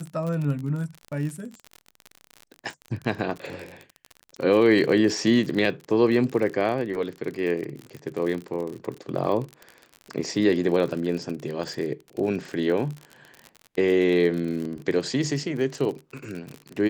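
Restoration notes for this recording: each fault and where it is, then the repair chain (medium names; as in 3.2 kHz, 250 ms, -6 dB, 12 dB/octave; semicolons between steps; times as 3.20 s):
crackle 45 per s -30 dBFS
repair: de-click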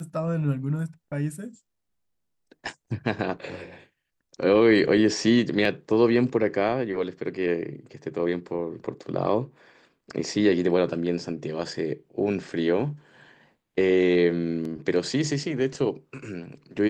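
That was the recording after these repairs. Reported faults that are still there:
nothing left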